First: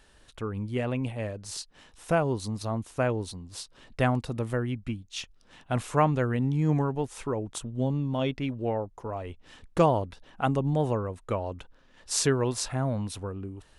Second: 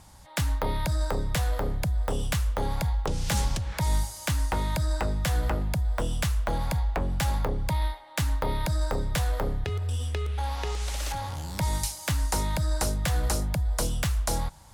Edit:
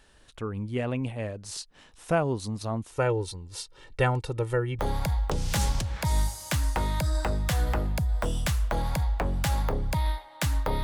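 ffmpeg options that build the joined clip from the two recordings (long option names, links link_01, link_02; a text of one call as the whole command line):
ffmpeg -i cue0.wav -i cue1.wav -filter_complex "[0:a]asettb=1/sr,asplit=3[link_01][link_02][link_03];[link_01]atrim=end=2.924[link_04];[link_02]atrim=start=2.92:end=4.79,asetpts=PTS-STARTPTS,afade=type=in:duration=0.004:curve=qsin,afade=type=out:start_time=1.866:duration=0.004:curve=qsin,aecho=1:1:2.2:0.78,atrim=end_sample=82467[link_05];[link_03]atrim=start=4.786[link_06];[link_04][link_05]acrossfade=duration=0.004:curve1=hsin:curve2=qsin[link_07];[link_07][link_06]acrossfade=duration=0.004:curve1=qsin:curve2=hsin,apad=whole_dur=10.83,atrim=end=10.83,atrim=end=4.792[link_08];[1:a]atrim=start=2.548:end=8.59[link_09];[link_08][link_09]acrossfade=duration=0.004:curve1=hsin:curve2=hsin" out.wav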